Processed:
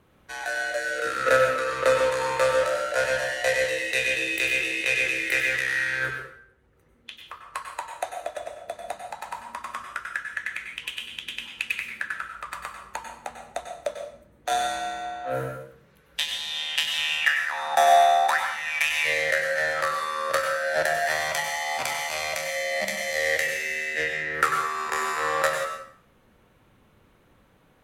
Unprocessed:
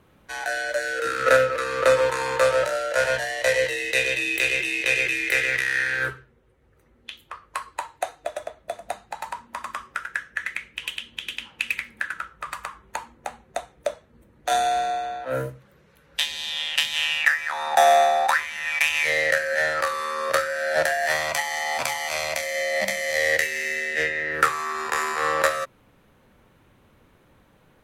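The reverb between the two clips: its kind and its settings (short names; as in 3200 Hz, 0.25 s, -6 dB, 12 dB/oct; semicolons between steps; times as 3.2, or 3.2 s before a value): plate-style reverb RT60 0.6 s, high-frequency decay 0.85×, pre-delay 85 ms, DRR 4 dB; gain -3 dB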